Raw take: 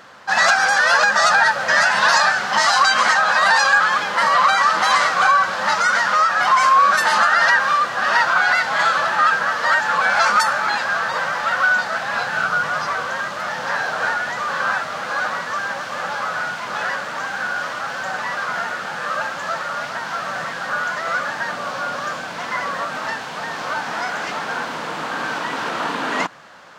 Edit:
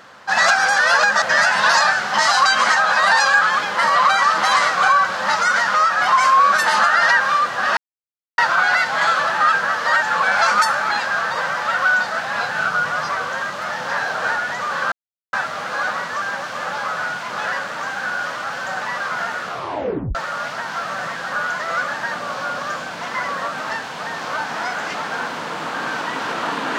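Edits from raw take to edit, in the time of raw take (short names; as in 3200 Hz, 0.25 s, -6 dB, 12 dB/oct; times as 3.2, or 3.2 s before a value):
1.22–1.61 cut
8.16 insert silence 0.61 s
14.7 insert silence 0.41 s
18.81 tape stop 0.71 s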